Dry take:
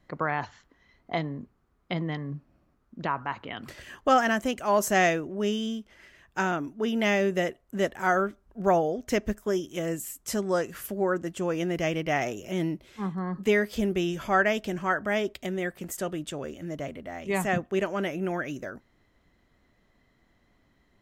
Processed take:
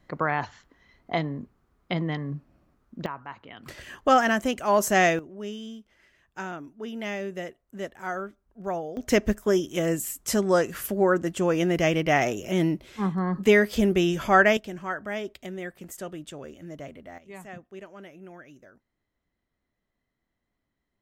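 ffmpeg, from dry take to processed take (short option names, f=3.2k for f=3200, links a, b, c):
-af "asetnsamples=n=441:p=0,asendcmd='3.06 volume volume -7.5dB;3.66 volume volume 2dB;5.19 volume volume -8dB;8.97 volume volume 5dB;14.57 volume volume -5dB;17.18 volume volume -15.5dB',volume=2.5dB"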